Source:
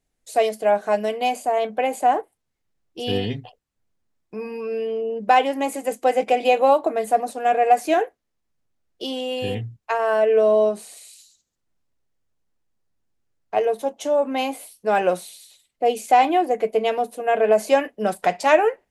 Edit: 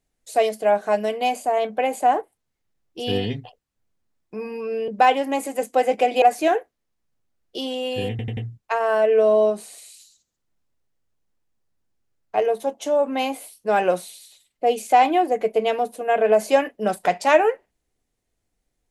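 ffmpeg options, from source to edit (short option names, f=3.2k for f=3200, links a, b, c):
-filter_complex "[0:a]asplit=6[a][b][c][d][e][f];[a]atrim=end=4.882[g];[b]atrim=start=5.168:end=6.512[h];[c]atrim=start=7.678:end=9.652[i];[d]atrim=start=9.558:end=9.652[j];[e]atrim=start=9.558:end=9.652[k];[f]atrim=start=9.558[l];[g][h]acrossfade=d=0.004:c1=hsin:c2=hsin[m];[m][i]acrossfade=d=0.004:c1=hsin:c2=hsin[n];[n][j]acrossfade=d=0.004:c1=hsin:c2=hsin[o];[o][k]acrossfade=d=0.004:c1=hsin:c2=hsin[p];[p][l]acrossfade=d=0.004:c1=hsin:c2=hsin"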